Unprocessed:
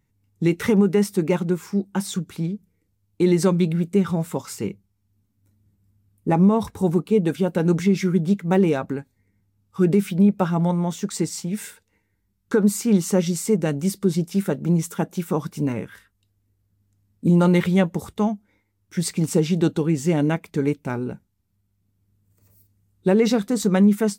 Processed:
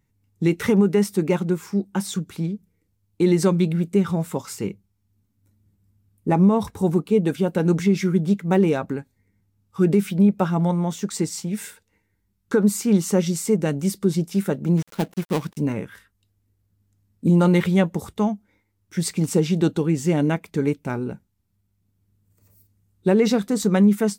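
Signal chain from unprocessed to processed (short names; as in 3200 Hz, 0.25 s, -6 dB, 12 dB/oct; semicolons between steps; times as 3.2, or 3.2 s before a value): 14.77–15.57 switching dead time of 0.2 ms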